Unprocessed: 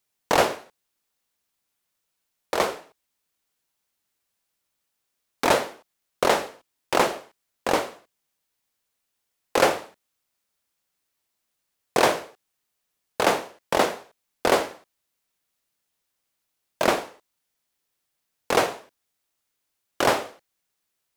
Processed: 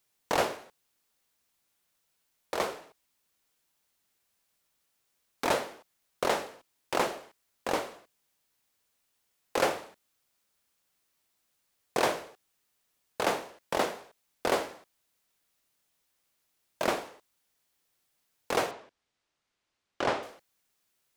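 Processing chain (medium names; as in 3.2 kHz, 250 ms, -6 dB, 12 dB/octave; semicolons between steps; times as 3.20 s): companding laws mixed up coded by mu; 18.71–20.23 s: distance through air 100 m; trim -8 dB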